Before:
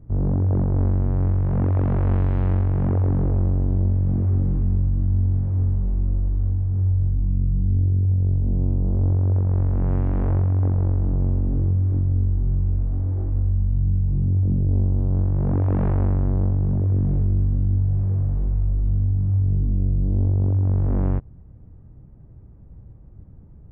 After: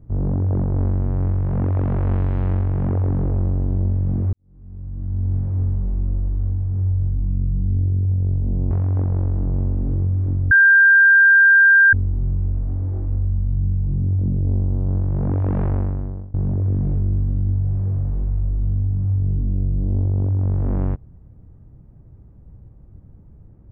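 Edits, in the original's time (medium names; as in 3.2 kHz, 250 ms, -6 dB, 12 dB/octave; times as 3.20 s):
4.33–5.34 s: fade in quadratic
8.71–10.37 s: delete
12.17 s: add tone 1.59 kHz -8 dBFS 1.42 s
15.96–16.58 s: fade out, to -24 dB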